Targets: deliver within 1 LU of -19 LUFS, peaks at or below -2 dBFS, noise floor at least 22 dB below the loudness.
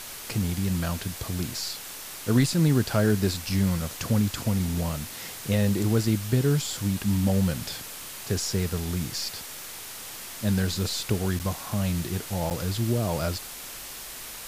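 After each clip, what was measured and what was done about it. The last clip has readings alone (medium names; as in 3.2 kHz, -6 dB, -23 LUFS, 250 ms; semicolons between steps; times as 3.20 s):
dropouts 2; longest dropout 8.9 ms; noise floor -40 dBFS; noise floor target -50 dBFS; loudness -27.5 LUFS; peak level -10.5 dBFS; loudness target -19.0 LUFS
-> interpolate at 11.39/12.50 s, 8.9 ms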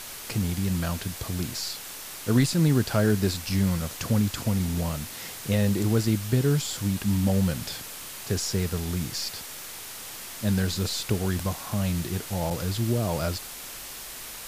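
dropouts 0; noise floor -40 dBFS; noise floor target -50 dBFS
-> noise print and reduce 10 dB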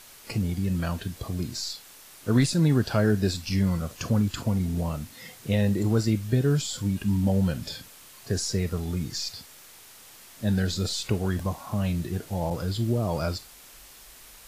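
noise floor -50 dBFS; loudness -27.0 LUFS; peak level -11.0 dBFS; loudness target -19.0 LUFS
-> trim +8 dB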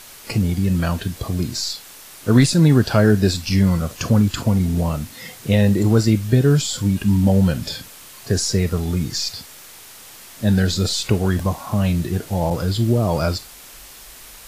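loudness -19.0 LUFS; peak level -3.0 dBFS; noise floor -42 dBFS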